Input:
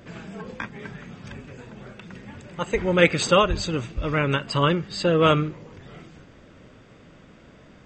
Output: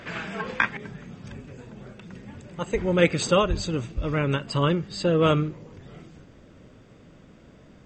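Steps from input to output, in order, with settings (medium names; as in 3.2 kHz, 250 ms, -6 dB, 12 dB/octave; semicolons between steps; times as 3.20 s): peaking EQ 1.9 kHz +12 dB 3 oct, from 0.77 s -5.5 dB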